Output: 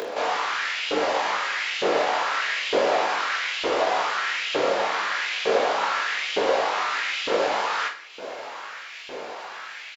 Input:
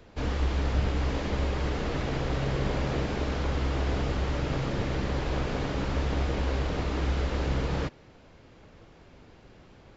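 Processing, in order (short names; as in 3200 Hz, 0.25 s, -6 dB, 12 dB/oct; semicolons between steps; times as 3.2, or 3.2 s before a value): low shelf 280 Hz -4.5 dB; upward compressor, threshold -33 dBFS; LFO high-pass saw up 1.1 Hz 410–3100 Hz; reverse bouncing-ball echo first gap 20 ms, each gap 1.3×, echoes 5; on a send at -14 dB: reverb, pre-delay 3 ms; on the sum: gain +7.5 dB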